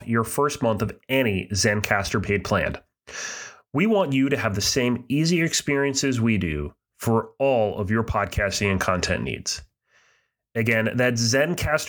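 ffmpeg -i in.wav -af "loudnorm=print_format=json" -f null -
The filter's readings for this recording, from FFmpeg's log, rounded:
"input_i" : "-23.0",
"input_tp" : "-4.8",
"input_lra" : "1.5",
"input_thresh" : "-33.5",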